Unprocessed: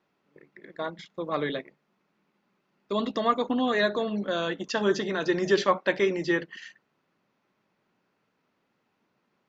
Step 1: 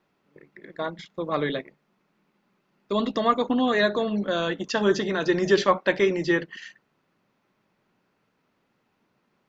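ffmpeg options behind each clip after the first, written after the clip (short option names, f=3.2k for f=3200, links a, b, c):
-af "lowshelf=f=88:g=8.5,volume=2.5dB"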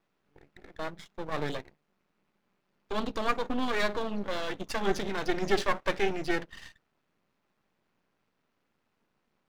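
-af "aeval=exprs='max(val(0),0)':c=same,volume=-2.5dB"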